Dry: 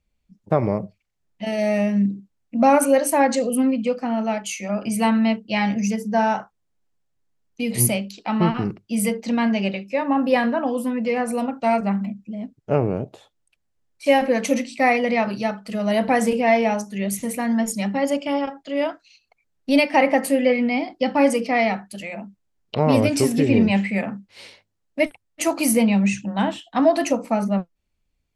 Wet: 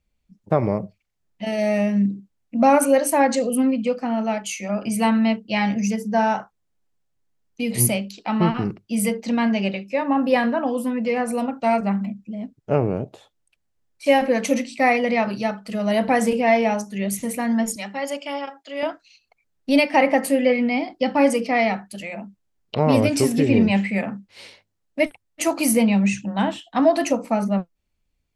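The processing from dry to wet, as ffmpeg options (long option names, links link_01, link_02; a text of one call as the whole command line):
ffmpeg -i in.wav -filter_complex "[0:a]asettb=1/sr,asplit=3[link_01][link_02][link_03];[link_01]atrim=end=17.764[link_04];[link_02]atrim=start=17.76:end=18.83,asetpts=PTS-STARTPTS,afade=type=in:duration=0.004:curve=qsin,afade=type=out:start_time=1.066:duration=0.004:curve=qsin,highpass=frequency=860:poles=1[link_05];[link_03]atrim=start=18.826[link_06];[link_04][link_05]acrossfade=duration=0.004:curve1=hsin:curve2=qsin[link_07];[link_07][link_06]acrossfade=duration=0.004:curve1=qsin:curve2=hsin" out.wav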